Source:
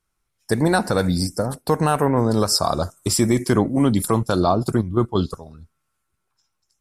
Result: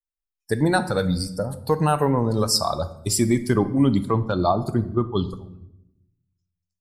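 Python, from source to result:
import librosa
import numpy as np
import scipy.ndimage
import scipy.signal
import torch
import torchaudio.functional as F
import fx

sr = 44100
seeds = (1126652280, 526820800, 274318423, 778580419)

y = fx.bin_expand(x, sr, power=1.5)
y = fx.lowpass(y, sr, hz=3200.0, slope=12, at=(3.99, 4.4))
y = fx.room_shoebox(y, sr, seeds[0], volume_m3=260.0, walls='mixed', distance_m=0.31)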